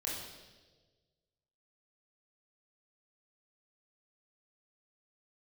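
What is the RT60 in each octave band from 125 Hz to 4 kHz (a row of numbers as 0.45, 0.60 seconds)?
1.9, 1.5, 1.6, 1.1, 1.1, 1.3 seconds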